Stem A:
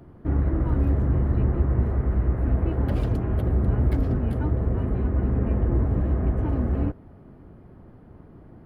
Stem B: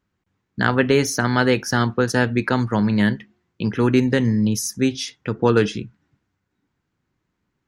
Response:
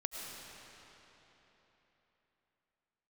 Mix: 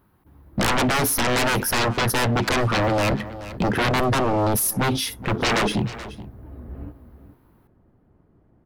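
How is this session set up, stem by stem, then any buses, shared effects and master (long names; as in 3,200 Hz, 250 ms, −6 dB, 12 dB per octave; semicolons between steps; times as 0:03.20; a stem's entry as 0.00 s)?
−19.5 dB, 0.00 s, no send, echo send −11.5 dB, automatic gain control gain up to 8 dB; automatic ducking −12 dB, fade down 0.30 s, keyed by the second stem
+2.0 dB, 0.00 s, no send, echo send −24 dB, drawn EQ curve 560 Hz 0 dB, 900 Hz +6 dB, 2,100 Hz −7 dB, 4,100 Hz −7 dB, 7,100 Hz −15 dB, 11,000 Hz +11 dB; leveller curve on the samples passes 1; sine wavefolder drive 9 dB, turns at −10 dBFS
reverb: not used
echo: single-tap delay 428 ms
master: brickwall limiter −16.5 dBFS, peak gain reduction 10.5 dB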